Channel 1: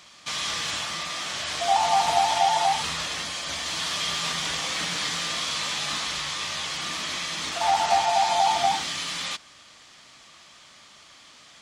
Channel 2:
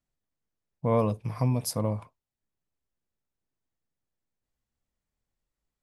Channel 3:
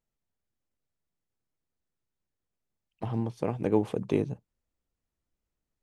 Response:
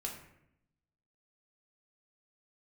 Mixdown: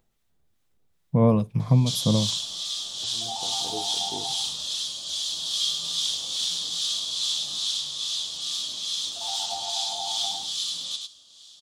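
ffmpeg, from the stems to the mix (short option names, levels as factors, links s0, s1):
-filter_complex "[0:a]firequalizer=gain_entry='entry(540,0);entry(2100,-13);entry(3300,14)':delay=0.05:min_phase=1,adelay=1600,volume=0.251,asplit=2[s0][s1];[s1]volume=0.447[s2];[1:a]equalizer=f=170:t=o:w=1.1:g=12.5,adelay=300,volume=1.26[s3];[2:a]acompressor=mode=upward:threshold=0.0158:ratio=2.5,volume=0.158,asplit=2[s4][s5];[s5]volume=0.631[s6];[3:a]atrim=start_sample=2205[s7];[s6][s7]afir=irnorm=-1:irlink=0[s8];[s2]aecho=0:1:103:1[s9];[s0][s3][s4][s8][s9]amix=inputs=5:normalize=0,equalizer=f=3600:t=o:w=0.39:g=4.5,acrossover=split=1000[s10][s11];[s10]aeval=exprs='val(0)*(1-0.5/2+0.5/2*cos(2*PI*2.4*n/s))':c=same[s12];[s11]aeval=exprs='val(0)*(1-0.5/2-0.5/2*cos(2*PI*2.4*n/s))':c=same[s13];[s12][s13]amix=inputs=2:normalize=0"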